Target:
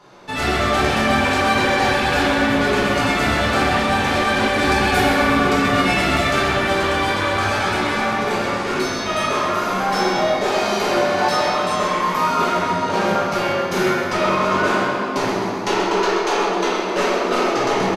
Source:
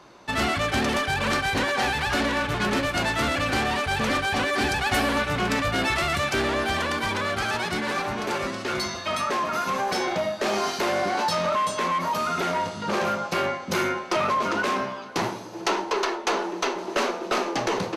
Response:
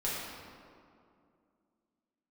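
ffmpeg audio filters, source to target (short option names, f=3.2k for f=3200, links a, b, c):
-filter_complex "[0:a]aecho=1:1:131|262|393|524|655|786|917:0.335|0.191|0.109|0.062|0.0354|0.0202|0.0115[a];[1:a]atrim=start_sample=2205[b];[a][b]afir=irnorm=-1:irlink=0"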